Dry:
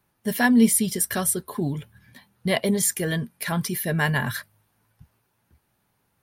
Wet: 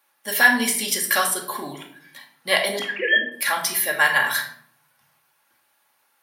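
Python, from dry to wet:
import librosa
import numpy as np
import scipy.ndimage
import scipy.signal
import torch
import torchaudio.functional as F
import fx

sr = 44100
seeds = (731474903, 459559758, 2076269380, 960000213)

y = fx.sine_speech(x, sr, at=(2.79, 3.32))
y = scipy.signal.sosfilt(scipy.signal.butter(2, 820.0, 'highpass', fs=sr, output='sos'), y)
y = fx.over_compress(y, sr, threshold_db=-28.0, ratio=-1.0, at=(0.66, 1.59), fade=0.02)
y = fx.room_shoebox(y, sr, seeds[0], volume_m3=1000.0, walls='furnished', distance_m=2.3)
y = y * 10.0 ** (6.0 / 20.0)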